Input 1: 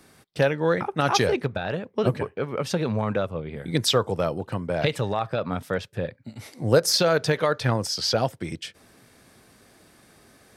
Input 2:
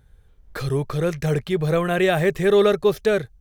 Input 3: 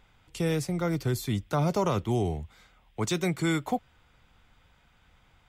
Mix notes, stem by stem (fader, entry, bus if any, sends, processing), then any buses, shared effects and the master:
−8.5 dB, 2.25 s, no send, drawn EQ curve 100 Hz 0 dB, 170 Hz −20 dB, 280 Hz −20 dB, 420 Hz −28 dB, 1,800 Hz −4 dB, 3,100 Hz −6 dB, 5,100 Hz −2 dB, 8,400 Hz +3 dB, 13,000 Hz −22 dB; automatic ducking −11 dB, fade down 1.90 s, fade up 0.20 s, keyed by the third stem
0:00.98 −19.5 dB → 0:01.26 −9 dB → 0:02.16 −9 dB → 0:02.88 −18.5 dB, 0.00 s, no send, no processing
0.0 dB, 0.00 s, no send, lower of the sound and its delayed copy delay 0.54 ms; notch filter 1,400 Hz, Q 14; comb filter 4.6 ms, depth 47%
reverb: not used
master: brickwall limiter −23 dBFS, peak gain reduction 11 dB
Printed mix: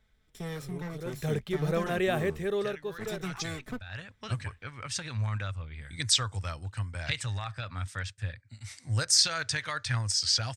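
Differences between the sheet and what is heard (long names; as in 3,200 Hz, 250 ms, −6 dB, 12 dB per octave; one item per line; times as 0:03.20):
stem 1 −8.5 dB → +2.0 dB
stem 3 0.0 dB → −10.0 dB
master: missing brickwall limiter −23 dBFS, peak gain reduction 11 dB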